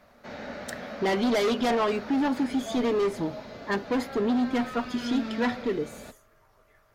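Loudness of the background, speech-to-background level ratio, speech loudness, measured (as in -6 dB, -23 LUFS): -39.0 LUFS, 11.5 dB, -27.5 LUFS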